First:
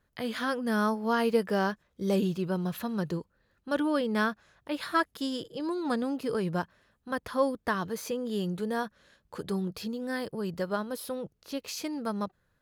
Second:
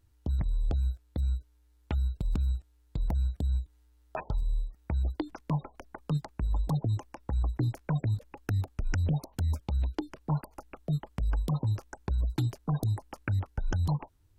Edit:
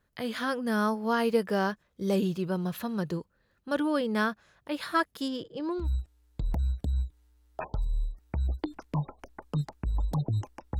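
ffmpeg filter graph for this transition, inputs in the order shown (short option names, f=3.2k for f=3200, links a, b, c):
-filter_complex "[0:a]asettb=1/sr,asplit=3[a][b][c];[a]atrim=end=5.284[d];[b]atrim=start=5.28:end=5.88,asetpts=PTS-STARTPTS,afade=t=in:d=0.004:c=qsin,afade=t=out:st=0.596:d=0.004:c=qsin,adynamicsmooth=sensitivity=4:basefreq=3.9k[e];[c]atrim=start=5.876[f];[d][e]acrossfade=d=0.004:c1=hsin:c2=qsin[g];[g][f]acrossfade=d=0.004:c1=qsin:c2=hsin,apad=whole_dur=10.79,atrim=end=10.79,atrim=end=5.88,asetpts=PTS-STARTPTS[h];[1:a]atrim=start=2.34:end=7.35,asetpts=PTS-STARTPTS[i];[h][i]acrossfade=d=0.1:c1=tri:c2=tri"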